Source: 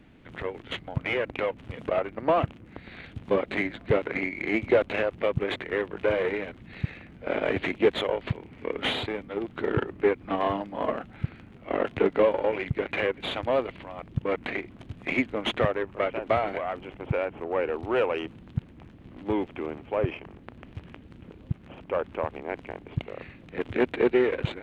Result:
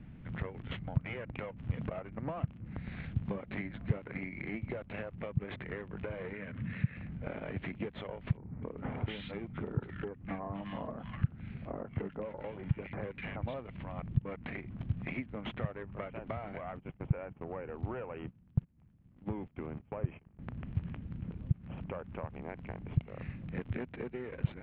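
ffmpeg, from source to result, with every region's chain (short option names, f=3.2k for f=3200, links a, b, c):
-filter_complex "[0:a]asettb=1/sr,asplit=3[a][b][c];[a]atrim=end=6.334[d];[b]atrim=start=6.33:end=6.97,asetpts=PTS-STARTPTS,afade=t=in:d=0.004:c=qsin,afade=t=out:st=0.636:d=0.004:c=qsin,highpass=110,equalizer=f=160:t=q:w=4:g=-4,equalizer=f=350:t=q:w=4:g=-8,equalizer=f=780:t=q:w=4:g=-10,equalizer=f=1.7k:t=q:w=4:g=4,lowpass=f=3.4k:w=0.5412,lowpass=f=3.4k:w=1.3066,acompressor=mode=upward:threshold=-34dB:ratio=2.5:attack=3.2:release=140:knee=2.83:detection=peak[e];[c]atrim=start=6.966[f];[d][e]acrossfade=d=0.004:c1=hsin:c2=qsin[g];[g][f]acrossfade=d=0.004:c1=qsin:c2=hsin,asettb=1/sr,asplit=3[h][i][j];[h]atrim=end=8.374[k];[i]atrim=start=8.37:end=13.54,asetpts=PTS-STARTPTS,afade=t=in:d=0.004:c=qsin,afade=t=out:st=5.166:d=0.004:c=qsin,acrossover=split=4600[l][m];[m]acompressor=threshold=-52dB:ratio=4:attack=1:release=60[n];[l][n]amix=inputs=2:normalize=0,acrossover=split=1500[o][p];[p]adelay=250[q];[o][q]amix=inputs=2:normalize=0,atrim=end_sample=227997[r];[j]atrim=start=13.536[s];[k][r]acrossfade=d=0.004:c1=hsin:c2=qsin[t];[t][s]acrossfade=d=0.004:c1=qsin:c2=hsin,asettb=1/sr,asplit=3[u][v][w];[u]atrim=end=16.724[x];[v]atrim=start=16.72:end=20.39,asetpts=PTS-STARTPTS,afade=t=in:d=0.004:c=qsin,afade=t=out:st=3.666:d=0.004:c=qsin,agate=range=-21dB:threshold=-41dB:ratio=16:release=100:detection=peak,acrossover=split=2600[y][z];[z]acompressor=threshold=-55dB:ratio=4:attack=1:release=60[aa];[y][aa]amix=inputs=2:normalize=0[ab];[w]atrim=start=20.386[ac];[x][ab]acrossfade=d=0.004:c1=hsin:c2=qsin[ad];[ad][ac]acrossfade=d=0.004:c1=qsin:c2=hsin,acompressor=threshold=-34dB:ratio=6,lowpass=2.7k,lowshelf=f=240:t=q:w=1.5:g=10,volume=-3.5dB"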